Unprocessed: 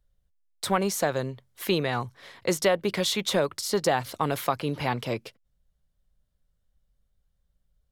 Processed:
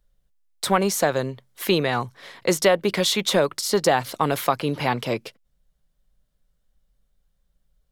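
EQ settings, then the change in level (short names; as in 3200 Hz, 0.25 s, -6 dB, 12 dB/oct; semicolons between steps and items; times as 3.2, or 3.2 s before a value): bell 79 Hz -14.5 dB 0.6 oct; +5.0 dB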